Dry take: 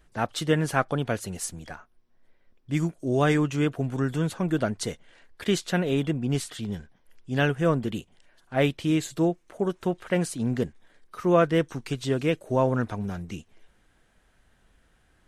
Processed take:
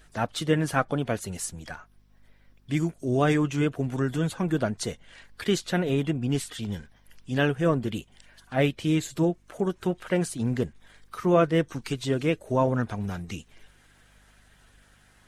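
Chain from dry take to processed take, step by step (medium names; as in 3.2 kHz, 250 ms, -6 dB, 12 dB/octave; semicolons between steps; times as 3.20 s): coarse spectral quantiser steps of 15 dB; hum 50 Hz, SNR 34 dB; tape noise reduction on one side only encoder only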